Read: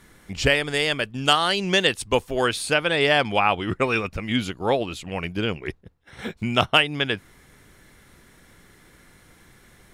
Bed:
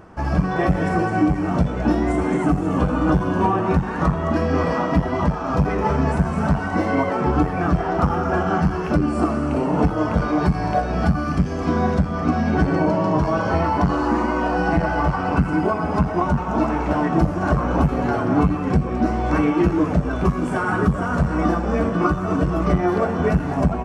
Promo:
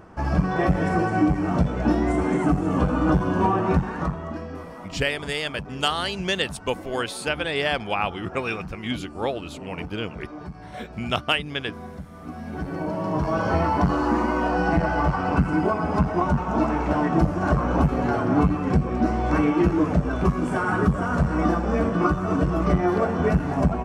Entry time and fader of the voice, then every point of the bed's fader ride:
4.55 s, -5.0 dB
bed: 3.78 s -2 dB
4.69 s -18.5 dB
12.15 s -18.5 dB
13.44 s -2 dB

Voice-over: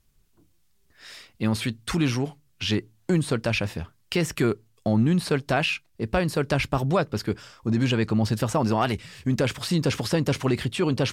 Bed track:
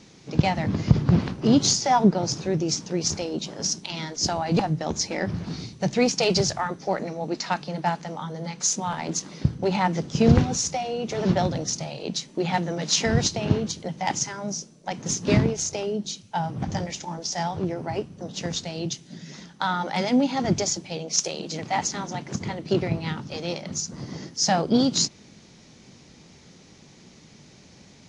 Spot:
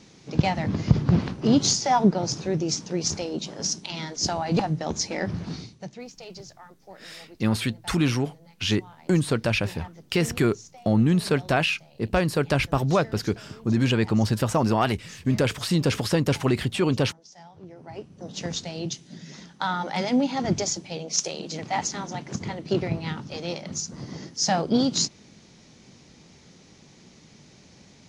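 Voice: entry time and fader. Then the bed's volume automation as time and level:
6.00 s, +1.0 dB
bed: 5.55 s -1 dB
6.04 s -20.5 dB
17.5 s -20.5 dB
18.32 s -1.5 dB

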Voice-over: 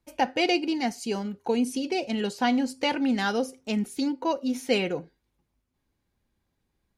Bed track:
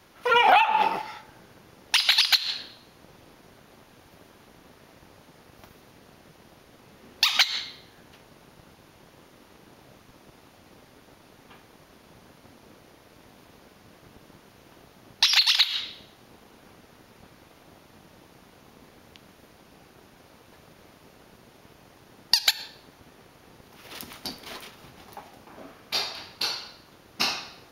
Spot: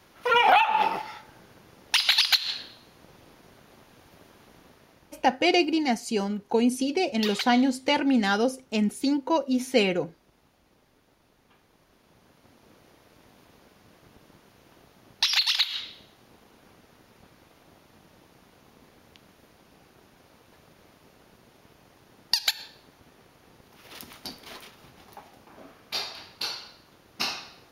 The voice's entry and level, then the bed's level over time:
5.05 s, +2.5 dB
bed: 4.59 s -1 dB
5.55 s -11 dB
11.49 s -11 dB
12.87 s -3.5 dB

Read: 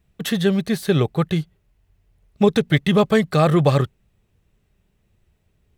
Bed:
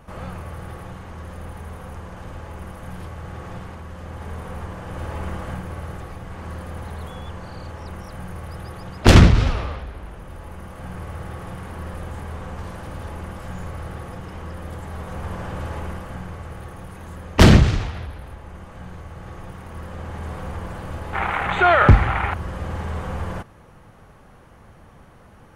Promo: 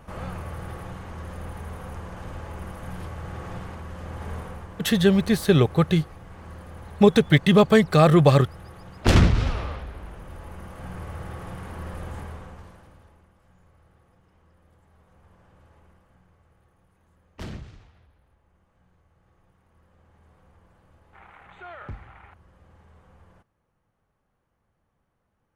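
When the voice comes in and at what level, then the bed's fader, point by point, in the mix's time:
4.60 s, +0.5 dB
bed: 4.37 s -1 dB
4.67 s -8.5 dB
8.9 s -8.5 dB
9.71 s -3 dB
12.2 s -3 dB
13.3 s -26.5 dB

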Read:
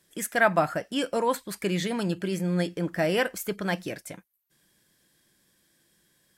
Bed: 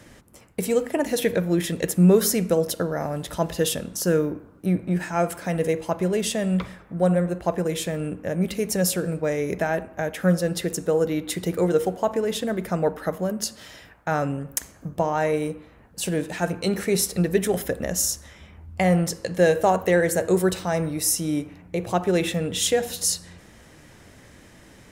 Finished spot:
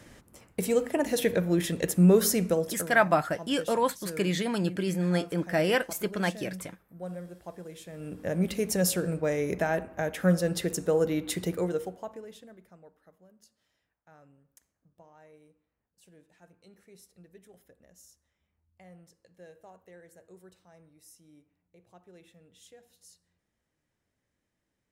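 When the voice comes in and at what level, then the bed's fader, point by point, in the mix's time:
2.55 s, -0.5 dB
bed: 2.46 s -3.5 dB
3.2 s -18.5 dB
7.85 s -18.5 dB
8.25 s -3.5 dB
11.42 s -3.5 dB
12.9 s -33 dB

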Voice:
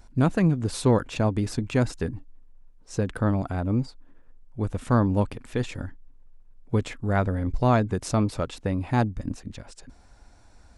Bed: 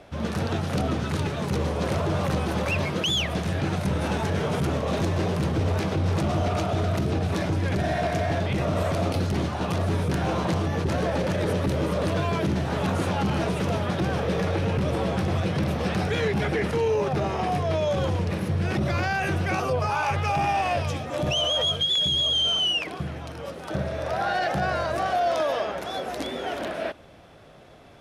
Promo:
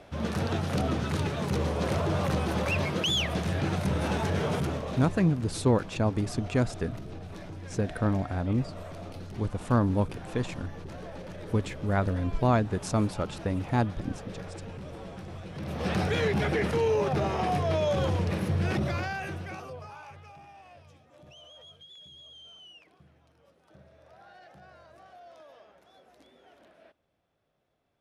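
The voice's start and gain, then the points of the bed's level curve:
4.80 s, -3.0 dB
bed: 4.52 s -2.5 dB
5.36 s -16.5 dB
15.49 s -16.5 dB
15.91 s -2 dB
18.71 s -2 dB
20.46 s -27.5 dB

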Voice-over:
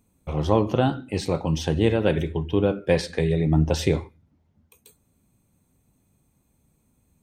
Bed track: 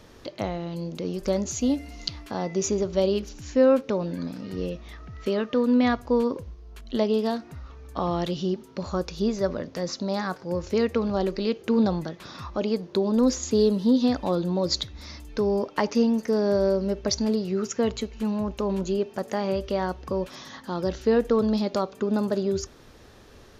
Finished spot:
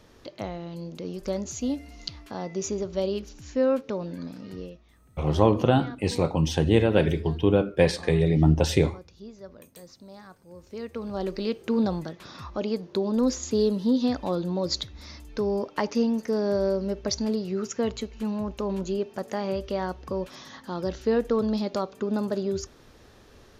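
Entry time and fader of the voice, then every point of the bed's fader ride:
4.90 s, +0.5 dB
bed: 4.52 s -4.5 dB
4.92 s -18.5 dB
10.54 s -18.5 dB
11.33 s -2.5 dB

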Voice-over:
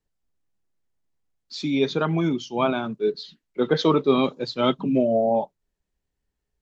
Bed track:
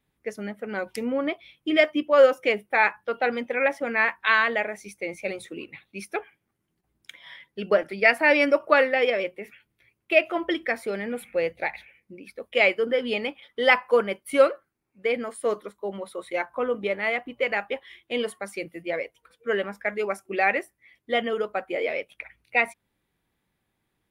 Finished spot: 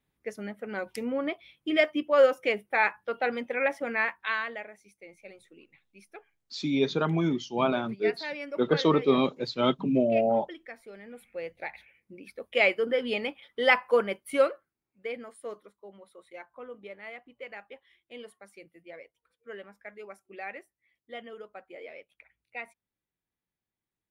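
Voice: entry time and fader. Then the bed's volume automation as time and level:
5.00 s, -3.5 dB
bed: 3.93 s -4 dB
4.88 s -17.5 dB
10.88 s -17.5 dB
12.21 s -3 dB
14.12 s -3 dB
15.93 s -17 dB

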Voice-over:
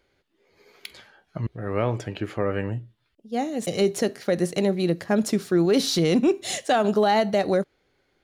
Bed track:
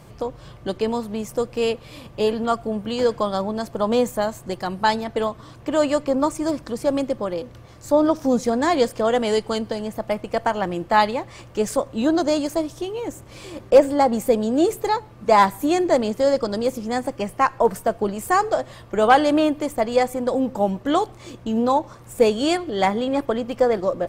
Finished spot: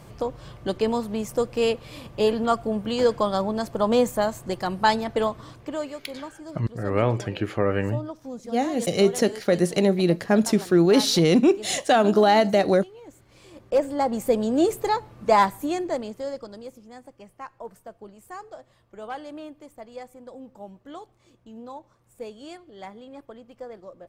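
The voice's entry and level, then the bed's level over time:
5.20 s, +2.5 dB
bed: 5.49 s -0.5 dB
5.97 s -17 dB
13.01 s -17 dB
14.41 s -2 dB
15.27 s -2 dB
16.93 s -20.5 dB

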